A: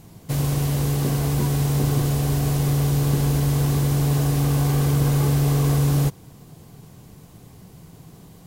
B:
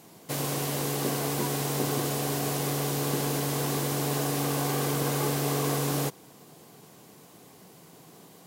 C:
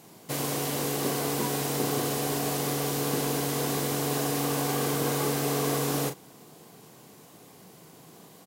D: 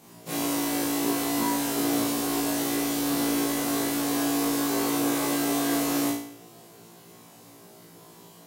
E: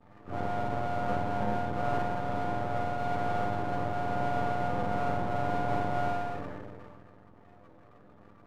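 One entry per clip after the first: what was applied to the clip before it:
high-pass 300 Hz 12 dB/octave
doubling 38 ms -8 dB
every event in the spectrogram widened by 60 ms; on a send: flutter echo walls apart 3 m, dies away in 0.55 s; on the sum: trim -6.5 dB
spectrum inverted on a logarithmic axis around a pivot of 450 Hz; half-wave rectifier; decay stretcher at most 25 dB/s

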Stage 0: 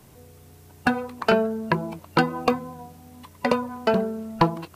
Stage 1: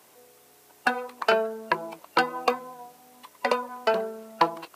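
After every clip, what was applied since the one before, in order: high-pass 490 Hz 12 dB/octave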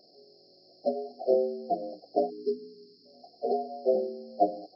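frequency axis rescaled in octaves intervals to 75%; spectral selection erased 2.29–3.06 s, 470–1800 Hz; brick-wall FIR band-stop 780–4100 Hz

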